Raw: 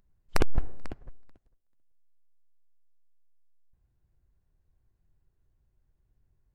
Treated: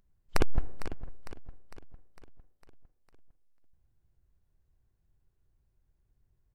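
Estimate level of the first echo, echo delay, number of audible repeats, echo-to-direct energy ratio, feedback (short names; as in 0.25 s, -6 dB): -14.0 dB, 0.454 s, 5, -12.5 dB, 56%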